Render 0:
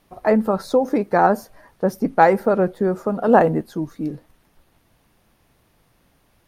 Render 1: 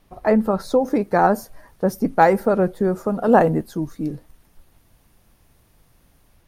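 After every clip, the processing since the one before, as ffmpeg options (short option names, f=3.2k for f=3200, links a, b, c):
-filter_complex "[0:a]acrossover=split=5500[a][b];[a]lowshelf=f=93:g=10.5[c];[b]dynaudnorm=f=630:g=3:m=6dB[d];[c][d]amix=inputs=2:normalize=0,volume=-1dB"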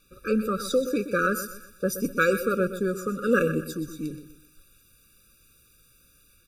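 -af "tiltshelf=f=1.2k:g=-8,aecho=1:1:125|250|375|500:0.266|0.0931|0.0326|0.0114,afftfilt=real='re*eq(mod(floor(b*sr/1024/570),2),0)':imag='im*eq(mod(floor(b*sr/1024/570),2),0)':win_size=1024:overlap=0.75"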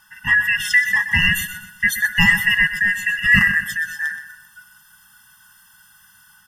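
-af "afftfilt=real='real(if(lt(b,272),68*(eq(floor(b/68),0)*1+eq(floor(b/68),1)*0+eq(floor(b/68),2)*3+eq(floor(b/68),3)*2)+mod(b,68),b),0)':imag='imag(if(lt(b,272),68*(eq(floor(b/68),0)*1+eq(floor(b/68),1)*0+eq(floor(b/68),2)*3+eq(floor(b/68),3)*2)+mod(b,68),b),0)':win_size=2048:overlap=0.75,volume=8dB"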